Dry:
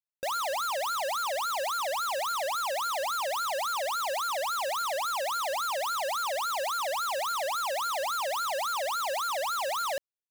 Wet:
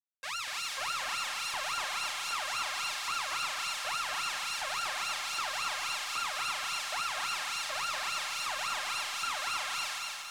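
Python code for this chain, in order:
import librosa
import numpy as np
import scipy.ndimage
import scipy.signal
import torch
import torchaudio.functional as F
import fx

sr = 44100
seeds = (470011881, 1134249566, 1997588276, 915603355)

p1 = fx.lower_of_two(x, sr, delay_ms=8.1)
p2 = fx.filter_lfo_highpass(p1, sr, shape='saw_up', hz=1.3, low_hz=850.0, high_hz=3700.0, q=0.83)
p3 = fx.echo_feedback(p2, sr, ms=239, feedback_pct=49, wet_db=-4)
p4 = fx.fold_sine(p3, sr, drive_db=11, ceiling_db=-17.5)
p5 = p3 + F.gain(torch.from_numpy(p4), -11.0).numpy()
p6 = scipy.signal.sosfilt(scipy.signal.butter(2, 9200.0, 'lowpass', fs=sr, output='sos'), p5)
p7 = p6 + fx.echo_heads(p6, sr, ms=92, heads='all three', feedback_pct=69, wet_db=-17.0, dry=0)
p8 = np.sign(p7) * np.maximum(np.abs(p7) - 10.0 ** (-48.5 / 20.0), 0.0)
y = F.gain(torch.from_numpy(p8), -6.5).numpy()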